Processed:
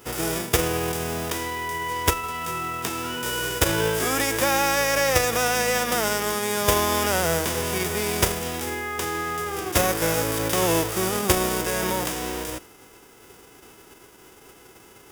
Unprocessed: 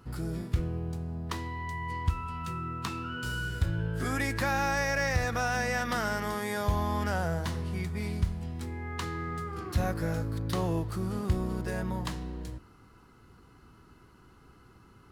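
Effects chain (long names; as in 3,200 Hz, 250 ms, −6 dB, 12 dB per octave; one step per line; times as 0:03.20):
spectral envelope flattened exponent 0.3
parametric band 420 Hz +9.5 dB 1.3 octaves
notch filter 4,200 Hz, Q 5.5
level +5 dB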